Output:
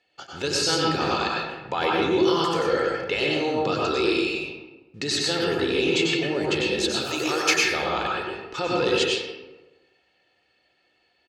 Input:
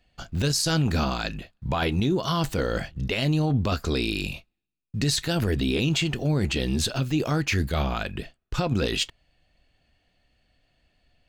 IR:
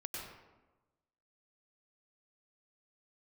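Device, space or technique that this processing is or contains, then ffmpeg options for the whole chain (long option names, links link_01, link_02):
supermarket ceiling speaker: -filter_complex "[0:a]asettb=1/sr,asplit=3[link_01][link_02][link_03];[link_01]atrim=end=7.014[link_04];[link_02]atrim=start=7.01:end=7.64,asetpts=PTS-STARTPTS,afade=type=in:duration=0.004:curve=qsin,afade=type=out:start_time=0.626:duration=0.004:curve=qsin,aemphasis=mode=production:type=riaa[link_05];[link_03]atrim=start=7.636[link_06];[link_04][link_05]acrossfade=duration=0.004:curve1=hsin:curve2=qsin[link_07];[link_07][link_06]acrossfade=duration=0.004:curve1=qsin:curve2=hsin,highpass=310,lowpass=6600[link_08];[1:a]atrim=start_sample=2205[link_09];[link_08][link_09]afir=irnorm=-1:irlink=0,asettb=1/sr,asplit=3[link_10][link_11][link_12];[link_10]atrim=end=3.304[link_13];[link_11]atrim=start=3.3:end=5.14,asetpts=PTS-STARTPTS,afade=type=in:duration=0.004:curve=qsin,afade=type=out:start_time=1.836:duration=0.004:curve=qsin,lowpass=11000[link_14];[link_12]atrim=start=5.136[link_15];[link_13][link_14]acrossfade=duration=0.004:curve1=hsin:curve2=qsin[link_16];[link_16][link_15]acrossfade=duration=0.004:curve1=qsin:curve2=hsin,aecho=1:1:2.3:0.47,volume=5dB"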